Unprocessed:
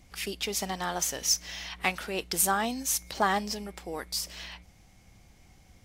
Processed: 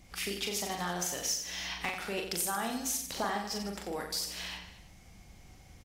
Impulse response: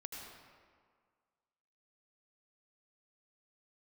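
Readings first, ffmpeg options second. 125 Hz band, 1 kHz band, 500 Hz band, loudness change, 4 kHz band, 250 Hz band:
-2.5 dB, -6.0 dB, -3.5 dB, -4.5 dB, -2.5 dB, -3.0 dB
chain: -af "acompressor=threshold=-34dB:ratio=3,asoftclip=type=hard:threshold=-22dB,aecho=1:1:40|90|152.5|230.6|328.3:0.631|0.398|0.251|0.158|0.1"

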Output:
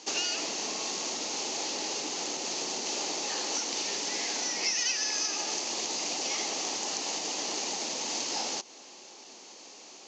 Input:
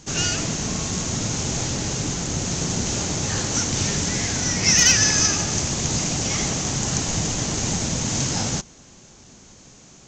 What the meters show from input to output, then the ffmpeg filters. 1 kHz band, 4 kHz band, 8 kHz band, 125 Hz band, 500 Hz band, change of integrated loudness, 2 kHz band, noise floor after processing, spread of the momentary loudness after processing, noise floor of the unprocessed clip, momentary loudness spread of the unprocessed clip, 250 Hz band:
-5.0 dB, -6.0 dB, -10.0 dB, -34.0 dB, -7.0 dB, -9.0 dB, -9.5 dB, -50 dBFS, 18 LU, -48 dBFS, 9 LU, -16.0 dB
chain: -af "acompressor=threshold=-28dB:ratio=6,highpass=f=320:w=0.5412,highpass=f=320:w=1.3066,equalizer=f=850:t=q:w=4:g=5,equalizer=f=1.5k:t=q:w=4:g=-6,equalizer=f=2.7k:t=q:w=4:g=4,equalizer=f=4.5k:t=q:w=4:g=6,lowpass=f=6.8k:w=0.5412,lowpass=f=6.8k:w=1.3066"

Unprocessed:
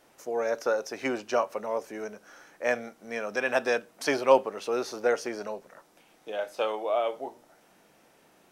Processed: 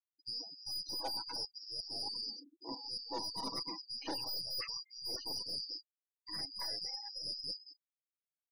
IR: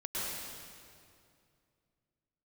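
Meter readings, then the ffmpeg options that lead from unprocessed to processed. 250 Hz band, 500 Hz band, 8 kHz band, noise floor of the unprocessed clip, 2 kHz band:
-14.5 dB, -26.0 dB, -6.5 dB, -62 dBFS, -24.0 dB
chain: -filter_complex "[0:a]afftfilt=real='real(if(lt(b,272),68*(eq(floor(b/68),0)*1+eq(floor(b/68),1)*2+eq(floor(b/68),2)*3+eq(floor(b/68),3)*0)+mod(b,68),b),0)':imag='imag(if(lt(b,272),68*(eq(floor(b/68),0)*1+eq(floor(b/68),1)*2+eq(floor(b/68),2)*3+eq(floor(b/68),3)*0)+mod(b,68),b),0)':win_size=2048:overlap=0.75,highpass=170,equalizer=f=190:t=q:w=4:g=-9,equalizer=f=270:t=q:w=4:g=10,equalizer=f=570:t=q:w=4:g=-7,equalizer=f=890:t=q:w=4:g=5,equalizer=f=2.2k:t=q:w=4:g=6,equalizer=f=3.6k:t=q:w=4:g=-10,lowpass=f=5.7k:w=0.5412,lowpass=f=5.7k:w=1.3066,acrossover=split=3400[a][b];[b]aecho=1:1:225|450|675:0.631|0.126|0.0252[c];[a][c]amix=inputs=2:normalize=0,afftdn=nr=12:nf=-43,tremolo=f=0.92:d=0.96,aecho=1:1:6.1:0.81,aeval=exprs='(tanh(44.7*val(0)+0.45)-tanh(0.45))/44.7':c=same,areverse,acompressor=threshold=-48dB:ratio=8,areverse,equalizer=f=540:t=o:w=0.9:g=11,afftfilt=real='re*gte(hypot(re,im),0.00158)':imag='im*gte(hypot(re,im),0.00158)':win_size=1024:overlap=0.75,volume=9.5dB"

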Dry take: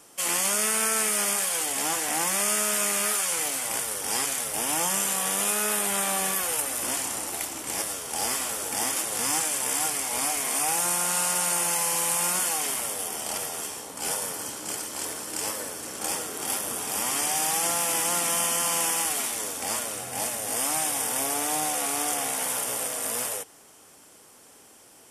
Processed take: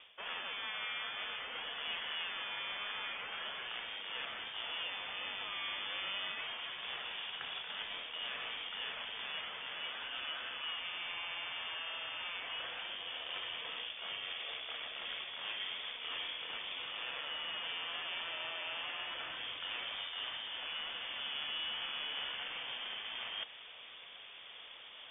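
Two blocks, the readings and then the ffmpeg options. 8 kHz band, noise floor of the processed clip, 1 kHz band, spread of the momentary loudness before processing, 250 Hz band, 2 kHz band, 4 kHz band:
under -40 dB, -52 dBFS, -15.5 dB, 7 LU, -24.5 dB, -7.5 dB, -4.0 dB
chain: -af "areverse,acompressor=threshold=-40dB:ratio=5,areverse,lowpass=f=3.1k:t=q:w=0.5098,lowpass=f=3.1k:t=q:w=0.6013,lowpass=f=3.1k:t=q:w=0.9,lowpass=f=3.1k:t=q:w=2.563,afreqshift=-3700,volume=5dB"

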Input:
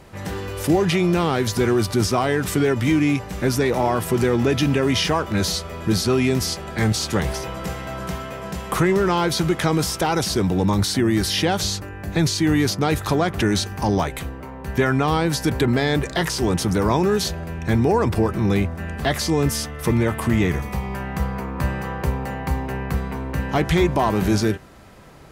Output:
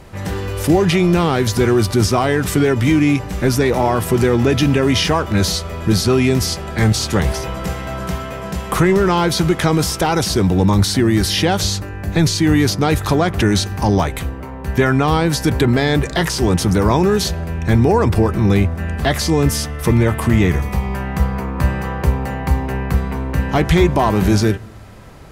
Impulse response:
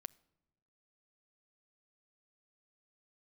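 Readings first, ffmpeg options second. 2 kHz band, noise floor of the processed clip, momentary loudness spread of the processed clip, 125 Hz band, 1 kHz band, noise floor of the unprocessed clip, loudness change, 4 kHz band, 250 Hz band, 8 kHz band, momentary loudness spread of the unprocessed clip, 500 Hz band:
+4.0 dB, -29 dBFS, 8 LU, +6.0 dB, +4.0 dB, -35 dBFS, +4.5 dB, +4.0 dB, +4.5 dB, +4.0 dB, 9 LU, +4.0 dB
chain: -filter_complex "[0:a]asplit=2[a][b];[1:a]atrim=start_sample=2205,asetrate=29106,aresample=44100,lowshelf=f=110:g=11.5[c];[b][c]afir=irnorm=-1:irlink=0,volume=0.5dB[d];[a][d]amix=inputs=2:normalize=0,volume=-1dB"

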